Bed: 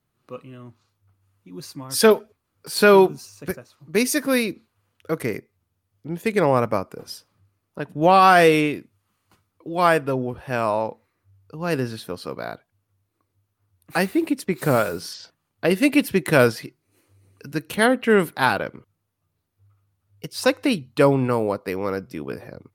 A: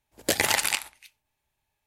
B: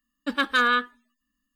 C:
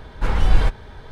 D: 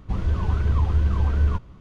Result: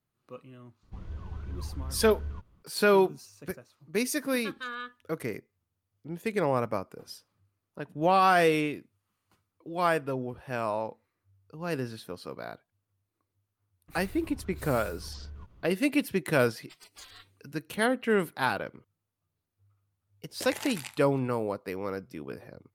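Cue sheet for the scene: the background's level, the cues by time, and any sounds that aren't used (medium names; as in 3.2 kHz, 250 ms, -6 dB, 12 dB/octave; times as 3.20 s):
bed -8.5 dB
0.83 s: add D -17 dB
4.07 s: add B -17 dB
13.88 s: add D -11.5 dB + compression, threshold -30 dBFS
16.43 s: add B -5.5 dB + spectral gate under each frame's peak -30 dB weak
20.12 s: add A -15.5 dB
not used: C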